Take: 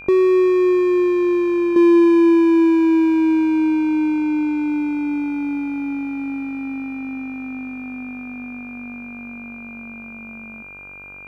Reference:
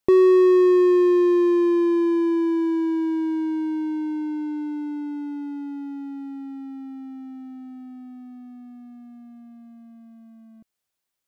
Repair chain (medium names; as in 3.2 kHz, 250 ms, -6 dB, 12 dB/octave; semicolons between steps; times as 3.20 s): de-hum 48.1 Hz, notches 33; band-stop 2.4 kHz, Q 30; inverse comb 181 ms -24 dB; gain correction -8 dB, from 1.76 s